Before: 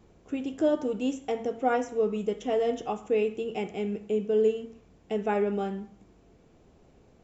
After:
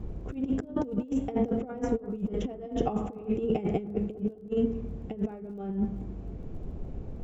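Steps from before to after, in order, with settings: tilt -4 dB/oct; negative-ratio compressor -30 dBFS, ratio -0.5; crackle 22/s -55 dBFS; on a send: analogue delay 0.201 s, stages 2048, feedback 34%, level -15 dB

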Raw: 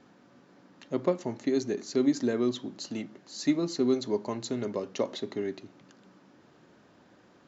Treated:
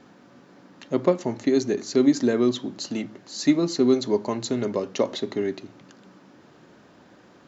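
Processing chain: de-hum 55.43 Hz, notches 2; gain +6.5 dB

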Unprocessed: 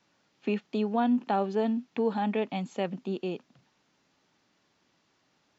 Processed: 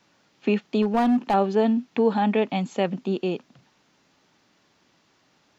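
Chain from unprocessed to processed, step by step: 0.82–1.34 hard clip -23.5 dBFS, distortion -16 dB; gain +7 dB

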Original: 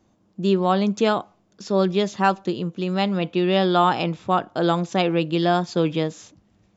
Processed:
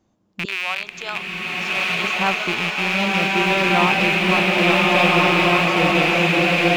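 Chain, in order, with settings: rattling part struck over -32 dBFS, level -9 dBFS; 0.45–2.04 HPF 1100 Hz 12 dB/oct; bloom reverb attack 1.5 s, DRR -5.5 dB; gain -3.5 dB

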